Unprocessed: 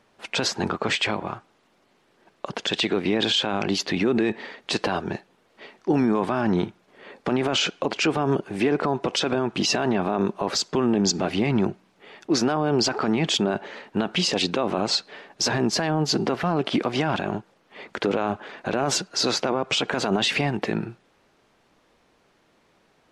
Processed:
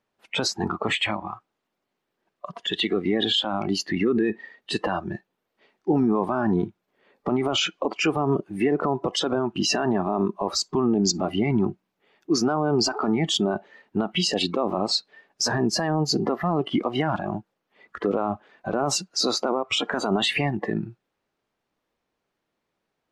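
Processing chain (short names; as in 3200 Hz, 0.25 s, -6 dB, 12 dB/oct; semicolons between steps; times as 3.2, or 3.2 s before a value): spectral noise reduction 17 dB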